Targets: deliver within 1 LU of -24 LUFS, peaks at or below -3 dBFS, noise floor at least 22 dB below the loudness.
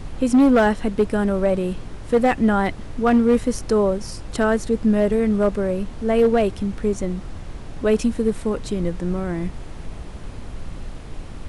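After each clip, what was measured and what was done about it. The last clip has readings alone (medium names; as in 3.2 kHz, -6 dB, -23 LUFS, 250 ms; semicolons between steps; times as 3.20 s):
clipped samples 1.5%; clipping level -10.0 dBFS; noise floor -35 dBFS; noise floor target -43 dBFS; loudness -20.5 LUFS; peak level -10.0 dBFS; loudness target -24.0 LUFS
-> clip repair -10 dBFS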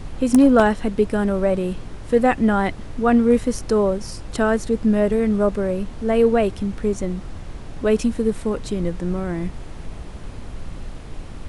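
clipped samples 0.0%; noise floor -35 dBFS; noise floor target -42 dBFS
-> noise print and reduce 7 dB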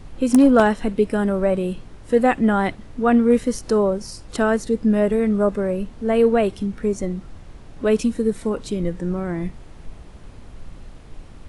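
noise floor -42 dBFS; loudness -20.0 LUFS; peak level -1.0 dBFS; loudness target -24.0 LUFS
-> trim -4 dB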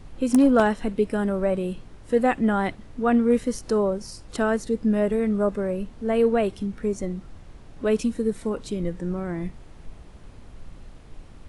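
loudness -24.0 LUFS; peak level -5.0 dBFS; noise floor -46 dBFS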